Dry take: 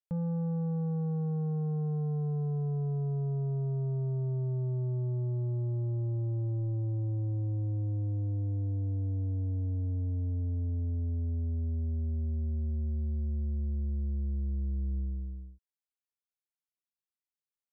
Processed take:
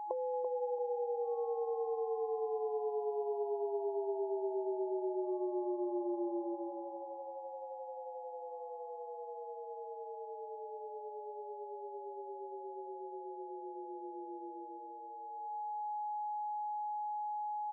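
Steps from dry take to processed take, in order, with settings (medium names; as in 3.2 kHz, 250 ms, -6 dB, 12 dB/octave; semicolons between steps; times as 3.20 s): whistle 840 Hz -57 dBFS; compression 5:1, threshold -43 dBFS, peak gain reduction 10.5 dB; feedback delay 337 ms, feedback 25%, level -8 dB; FFT band-pass 340–1100 Hz; trim +18 dB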